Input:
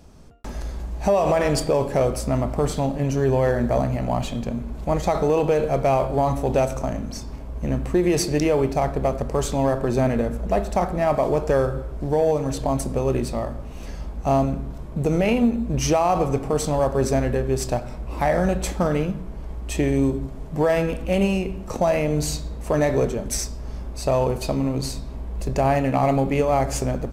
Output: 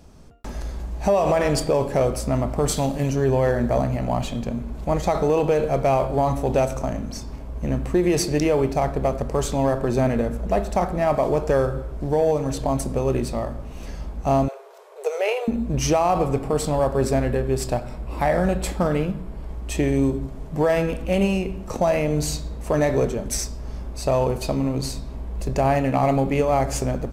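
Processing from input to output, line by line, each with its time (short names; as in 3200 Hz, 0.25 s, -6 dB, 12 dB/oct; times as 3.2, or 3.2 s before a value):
2.68–3.1 high shelf 3300 Hz +10.5 dB
14.48–15.48 brick-wall FIR high-pass 380 Hz
16.1–19.49 notch 6100 Hz, Q 8.2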